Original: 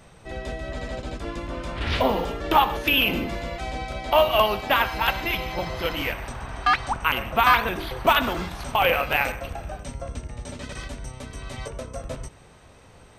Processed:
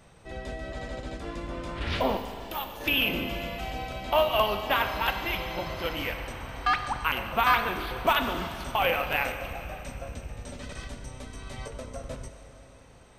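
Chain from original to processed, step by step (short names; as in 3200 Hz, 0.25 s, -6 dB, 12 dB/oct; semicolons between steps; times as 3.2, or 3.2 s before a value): 2.17–2.81 pre-emphasis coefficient 0.8; Schroeder reverb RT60 3.2 s, combs from 31 ms, DRR 8.5 dB; gain -5 dB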